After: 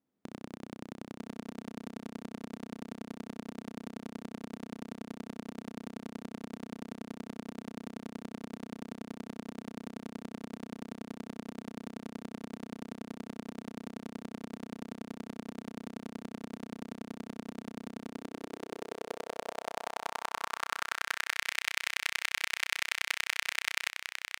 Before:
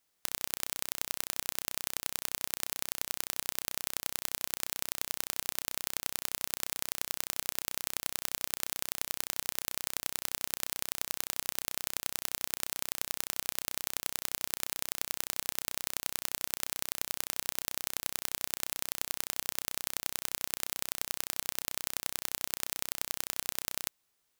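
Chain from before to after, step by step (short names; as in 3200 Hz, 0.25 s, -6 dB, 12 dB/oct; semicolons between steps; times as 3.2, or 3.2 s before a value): echo 0.948 s -5 dB; band-pass sweep 230 Hz -> 2100 Hz, 17.97–21.54; gain +13.5 dB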